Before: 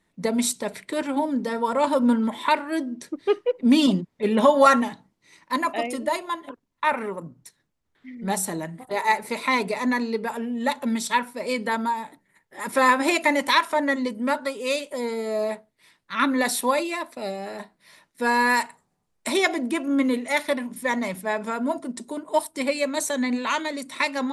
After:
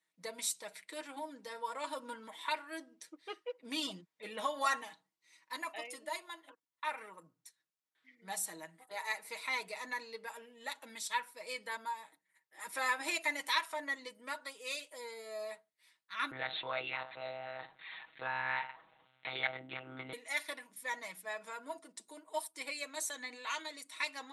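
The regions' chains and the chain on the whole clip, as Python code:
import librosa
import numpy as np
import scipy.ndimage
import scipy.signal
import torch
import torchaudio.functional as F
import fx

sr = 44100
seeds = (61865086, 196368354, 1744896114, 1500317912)

y = fx.chain(x, sr, fx.lpc_monotone(seeds[0], pitch_hz=130.0, order=10),
    fx.env_flatten(amount_pct=50), at=(16.31, 20.13))
y = fx.lowpass(y, sr, hz=1700.0, slope=6)
y = np.diff(y, prepend=0.0)
y = y + 0.6 * np.pad(y, (int(6.3 * sr / 1000.0), 0))[:len(y)]
y = y * 10.0 ** (1.5 / 20.0)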